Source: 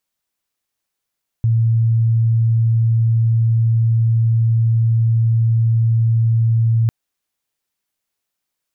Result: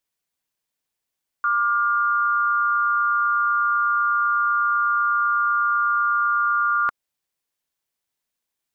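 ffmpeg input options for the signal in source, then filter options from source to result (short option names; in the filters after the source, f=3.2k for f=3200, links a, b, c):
-f lavfi -i "sine=f=114:d=5.45:r=44100,volume=6.56dB"
-af "highpass=110,aeval=exprs='val(0)*sin(2*PI*1300*n/s)':c=same"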